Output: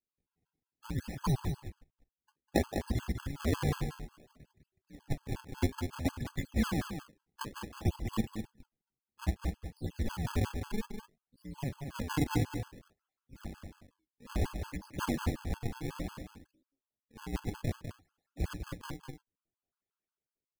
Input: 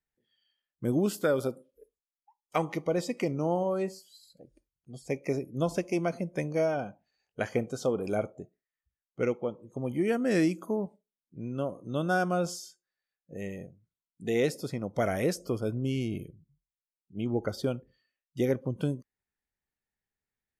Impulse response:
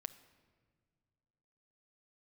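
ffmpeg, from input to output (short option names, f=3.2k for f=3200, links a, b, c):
-filter_complex "[0:a]asettb=1/sr,asplit=3[a][b][c];[a]atrim=end=14.364[d];[b]atrim=start=14.36:end=16.01,asetpts=PTS-STARTPTS,afade=t=in:d=0.004:c=qsin,afade=t=out:st=1.646:d=0.004:c=qsin,highpass=f=76:w=0.5412,highpass=f=76:w=1.3066[e];[c]atrim=start=16.006[f];[d][e]acrossfade=d=0.004:c1=hsin:c2=qsin[g];[g][f]acrossfade=d=0.004:c1=qsin:c2=hsin,acrossover=split=460|5900[h][i][j];[i]dynaudnorm=f=250:g=9:m=11dB[k];[h][k][j]amix=inputs=3:normalize=0,afreqshift=-420,tremolo=f=260:d=0.519,acrusher=samples=42:mix=1:aa=0.000001:lfo=1:lforange=67.2:lforate=0.59,aecho=1:1:200:0.422,afftfilt=real='re*gt(sin(2*PI*5.5*pts/sr)*(1-2*mod(floor(b*sr/1024/850),2)),0)':imag='im*gt(sin(2*PI*5.5*pts/sr)*(1-2*mod(floor(b*sr/1024/850),2)),0)':win_size=1024:overlap=0.75,volume=-6.5dB"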